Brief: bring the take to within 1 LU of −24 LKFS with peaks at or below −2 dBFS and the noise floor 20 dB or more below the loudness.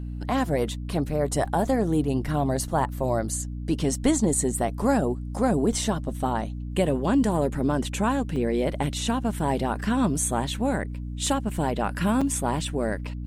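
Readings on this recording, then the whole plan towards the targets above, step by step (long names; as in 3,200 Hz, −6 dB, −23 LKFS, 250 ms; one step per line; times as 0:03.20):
number of dropouts 3; longest dropout 5.0 ms; mains hum 60 Hz; hum harmonics up to 300 Hz; level of the hum −31 dBFS; integrated loudness −25.5 LKFS; sample peak −9.0 dBFS; target loudness −24.0 LKFS
→ repair the gap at 0:01.45/0:08.36/0:12.21, 5 ms
hum removal 60 Hz, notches 5
level +1.5 dB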